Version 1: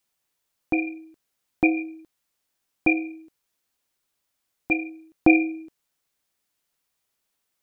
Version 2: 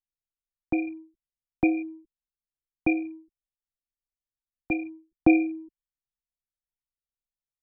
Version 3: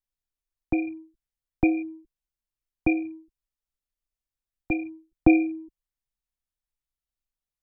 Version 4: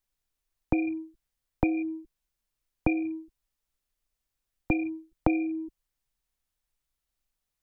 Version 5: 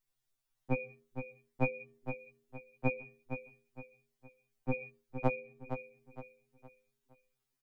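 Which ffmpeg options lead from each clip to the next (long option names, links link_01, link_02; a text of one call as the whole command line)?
ffmpeg -i in.wav -filter_complex "[0:a]anlmdn=1.58,highshelf=frequency=2100:gain=-8.5,acrossover=split=250|440[link_01][link_02][link_03];[link_01]acontrast=31[link_04];[link_04][link_02][link_03]amix=inputs=3:normalize=0,volume=-3dB" out.wav
ffmpeg -i in.wav -af "lowshelf=frequency=100:gain=11.5" out.wav
ffmpeg -i in.wav -af "acompressor=threshold=-29dB:ratio=10,volume=7dB" out.wav
ffmpeg -i in.wav -af "aecho=1:1:464|928|1392|1856:0.376|0.135|0.0487|0.0175,afftfilt=real='re*2.45*eq(mod(b,6),0)':imag='im*2.45*eq(mod(b,6),0)':win_size=2048:overlap=0.75" out.wav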